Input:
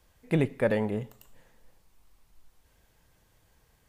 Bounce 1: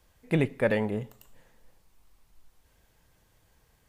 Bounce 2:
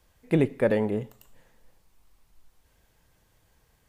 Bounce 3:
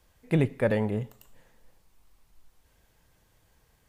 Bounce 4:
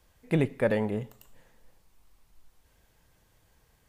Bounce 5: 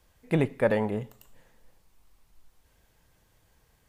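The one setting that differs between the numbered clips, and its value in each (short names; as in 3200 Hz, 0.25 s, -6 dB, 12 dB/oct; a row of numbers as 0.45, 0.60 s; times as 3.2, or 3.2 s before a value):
dynamic EQ, frequency: 2400, 350, 100, 7500, 940 Hz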